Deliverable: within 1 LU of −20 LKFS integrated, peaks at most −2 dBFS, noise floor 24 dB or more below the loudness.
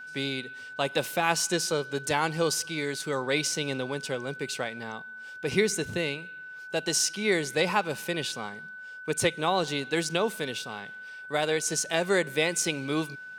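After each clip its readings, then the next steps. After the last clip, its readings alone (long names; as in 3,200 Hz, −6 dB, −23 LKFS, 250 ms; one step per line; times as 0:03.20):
interfering tone 1,500 Hz; level of the tone −40 dBFS; integrated loudness −28.5 LKFS; sample peak −8.0 dBFS; target loudness −20.0 LKFS
→ notch filter 1,500 Hz, Q 30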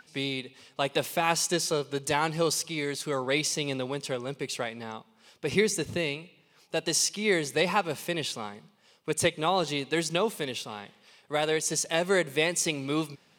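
interfering tone none found; integrated loudness −28.5 LKFS; sample peak −9.0 dBFS; target loudness −20.0 LKFS
→ level +8.5 dB
brickwall limiter −2 dBFS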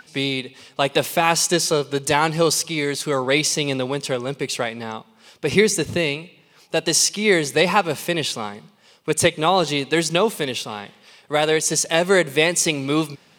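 integrated loudness −20.0 LKFS; sample peak −2.0 dBFS; background noise floor −55 dBFS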